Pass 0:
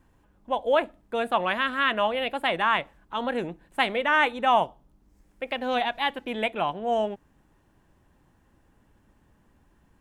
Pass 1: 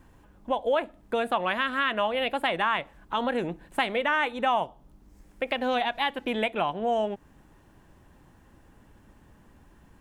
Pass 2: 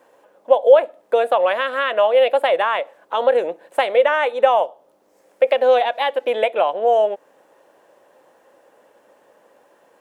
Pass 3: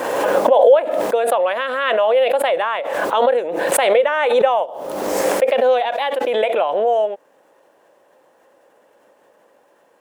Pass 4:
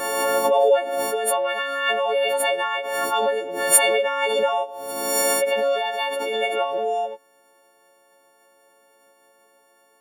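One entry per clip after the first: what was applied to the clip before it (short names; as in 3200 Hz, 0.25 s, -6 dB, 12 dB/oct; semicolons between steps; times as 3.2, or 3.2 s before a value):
compressor 2.5:1, threshold -33 dBFS, peak gain reduction 11.5 dB; gain +6.5 dB
resonant high-pass 530 Hz, resonance Q 4.9; gain +3 dB
backwards sustainer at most 28 dB/s; gain -1.5 dB
frequency quantiser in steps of 4 st; gain -7 dB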